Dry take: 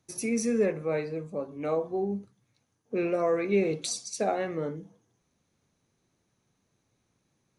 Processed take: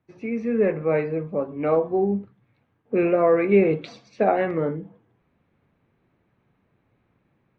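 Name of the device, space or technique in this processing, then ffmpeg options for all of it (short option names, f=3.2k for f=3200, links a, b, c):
action camera in a waterproof case: -af "lowpass=f=2.6k:w=0.5412,lowpass=f=2.6k:w=1.3066,dynaudnorm=f=420:g=3:m=8dB" -ar 48000 -c:a aac -b:a 48k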